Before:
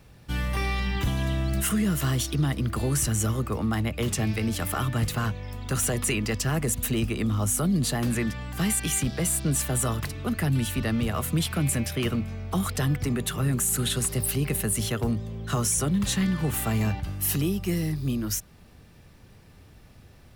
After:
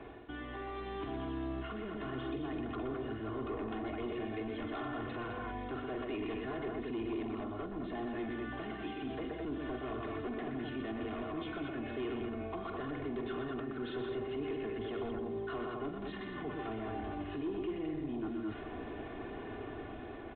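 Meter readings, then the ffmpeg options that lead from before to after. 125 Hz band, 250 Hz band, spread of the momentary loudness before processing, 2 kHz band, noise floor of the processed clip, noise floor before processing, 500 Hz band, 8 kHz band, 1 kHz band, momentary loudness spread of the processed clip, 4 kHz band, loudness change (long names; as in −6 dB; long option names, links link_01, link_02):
−21.5 dB, −10.5 dB, 5 LU, −11.5 dB, −45 dBFS, −52 dBFS, −4.5 dB, below −40 dB, −7.0 dB, 4 LU, −17.5 dB, −13.5 dB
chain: -filter_complex "[0:a]alimiter=level_in=2dB:limit=-24dB:level=0:latency=1:release=16,volume=-2dB,acrossover=split=220 2500:gain=0.1 1 0.141[link_01][link_02][link_03];[link_01][link_02][link_03]amix=inputs=3:normalize=0,asplit=2[link_04][link_05];[link_05]aecho=0:1:45|78|122|161|211:0.316|0.119|0.531|0.141|0.501[link_06];[link_04][link_06]amix=inputs=2:normalize=0,aeval=exprs='0.0668*sin(PI/2*2.51*val(0)/0.0668)':channel_layout=same,areverse,acompressor=threshold=-42dB:ratio=8,areverse,equalizer=frequency=2000:width_type=o:width=2.1:gain=-6.5,aecho=1:1:2.8:0.7,dynaudnorm=framelen=170:gausssize=9:maxgain=3dB,volume=1dB" -ar 8000 -c:a pcm_alaw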